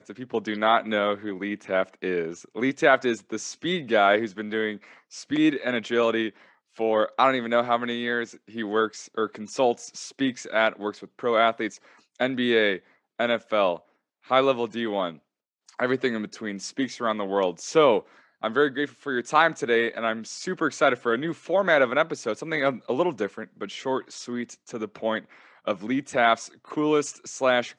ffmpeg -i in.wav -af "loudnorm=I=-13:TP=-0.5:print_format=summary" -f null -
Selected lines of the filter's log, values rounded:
Input Integrated:    -25.3 LUFS
Input True Peak:      -4.4 dBTP
Input LRA:             3.4 LU
Input Threshold:     -35.7 LUFS